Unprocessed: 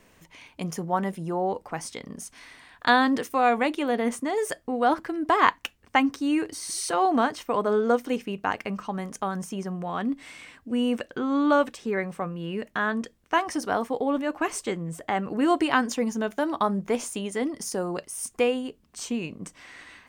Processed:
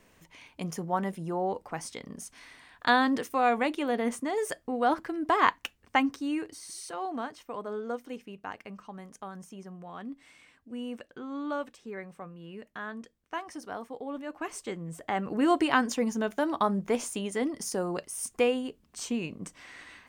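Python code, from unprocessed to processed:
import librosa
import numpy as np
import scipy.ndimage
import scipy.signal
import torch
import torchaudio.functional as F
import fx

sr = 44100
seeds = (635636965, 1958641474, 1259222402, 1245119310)

y = fx.gain(x, sr, db=fx.line((5.98, -3.5), (6.92, -12.5), (14.01, -12.5), (15.36, -2.0)))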